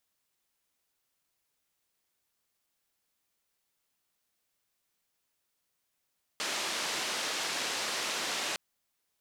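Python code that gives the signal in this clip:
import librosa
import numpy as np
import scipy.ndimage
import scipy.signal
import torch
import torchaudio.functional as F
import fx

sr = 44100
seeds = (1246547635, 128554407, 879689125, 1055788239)

y = fx.band_noise(sr, seeds[0], length_s=2.16, low_hz=270.0, high_hz=5500.0, level_db=-34.0)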